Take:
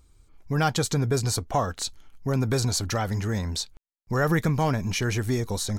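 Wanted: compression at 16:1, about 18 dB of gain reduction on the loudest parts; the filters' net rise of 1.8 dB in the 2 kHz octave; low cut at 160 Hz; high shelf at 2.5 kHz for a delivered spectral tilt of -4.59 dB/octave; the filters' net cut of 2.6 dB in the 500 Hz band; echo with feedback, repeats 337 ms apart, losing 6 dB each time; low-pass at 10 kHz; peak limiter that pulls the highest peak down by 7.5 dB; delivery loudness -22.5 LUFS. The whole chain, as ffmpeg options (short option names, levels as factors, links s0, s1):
-af "highpass=160,lowpass=10000,equalizer=f=500:t=o:g=-3,equalizer=f=2000:t=o:g=6.5,highshelf=f=2500:g=-9,acompressor=threshold=0.0126:ratio=16,alimiter=level_in=2.66:limit=0.0631:level=0:latency=1,volume=0.376,aecho=1:1:337|674|1011|1348|1685|2022:0.501|0.251|0.125|0.0626|0.0313|0.0157,volume=11.2"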